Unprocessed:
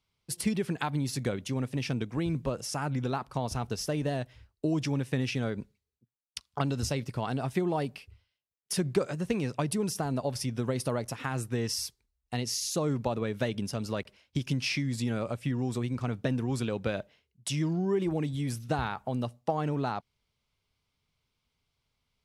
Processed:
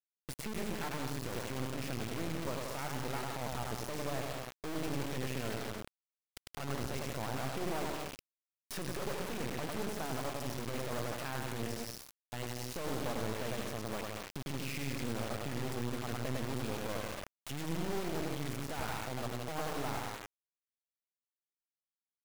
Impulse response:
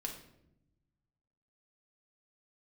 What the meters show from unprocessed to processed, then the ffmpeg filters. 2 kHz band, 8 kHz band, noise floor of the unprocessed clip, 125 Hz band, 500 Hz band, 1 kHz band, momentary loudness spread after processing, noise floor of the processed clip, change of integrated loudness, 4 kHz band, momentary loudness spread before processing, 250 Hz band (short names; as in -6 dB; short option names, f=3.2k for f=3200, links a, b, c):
-3.0 dB, -6.5 dB, -82 dBFS, -9.5 dB, -6.5 dB, -4.5 dB, 6 LU, under -85 dBFS, -7.5 dB, -5.5 dB, 6 LU, -9.0 dB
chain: -filter_complex "[0:a]equalizer=f=160:t=o:w=1.5:g=-3,bandreject=f=50:t=h:w=6,bandreject=f=100:t=h:w=6,bandreject=f=150:t=h:w=6,bandreject=f=200:t=h:w=6,bandreject=f=250:t=h:w=6,bandreject=f=300:t=h:w=6,bandreject=f=350:t=h:w=6,bandreject=f=400:t=h:w=6,asplit=2[a][b];[b]aecho=0:1:100|175|231.2|273.4|305.1:0.631|0.398|0.251|0.158|0.1[c];[a][c]amix=inputs=2:normalize=0,acrossover=split=2600[d][e];[e]acompressor=threshold=-41dB:ratio=4:attack=1:release=60[f];[d][f]amix=inputs=2:normalize=0,highshelf=f=3.4k:g=-7.5,volume=26dB,asoftclip=hard,volume=-26dB,acompressor=threshold=-35dB:ratio=3,alimiter=level_in=13.5dB:limit=-24dB:level=0:latency=1:release=467,volume=-13.5dB,acrusher=bits=5:dc=4:mix=0:aa=0.000001,volume=8.5dB"